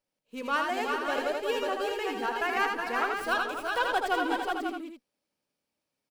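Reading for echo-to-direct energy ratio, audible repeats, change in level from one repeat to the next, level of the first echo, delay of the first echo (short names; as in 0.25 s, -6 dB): 0.5 dB, 6, no steady repeat, -5.0 dB, 80 ms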